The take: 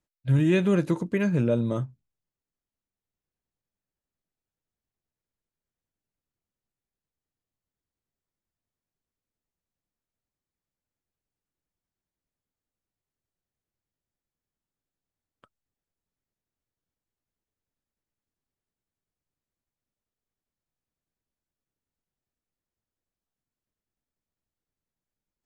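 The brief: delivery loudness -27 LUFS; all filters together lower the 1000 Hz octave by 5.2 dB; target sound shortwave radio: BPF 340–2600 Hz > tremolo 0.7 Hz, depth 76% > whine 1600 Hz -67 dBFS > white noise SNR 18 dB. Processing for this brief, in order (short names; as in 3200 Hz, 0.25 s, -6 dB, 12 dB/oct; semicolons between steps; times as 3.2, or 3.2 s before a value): BPF 340–2600 Hz; bell 1000 Hz -6.5 dB; tremolo 0.7 Hz, depth 76%; whine 1600 Hz -67 dBFS; white noise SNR 18 dB; gain +8 dB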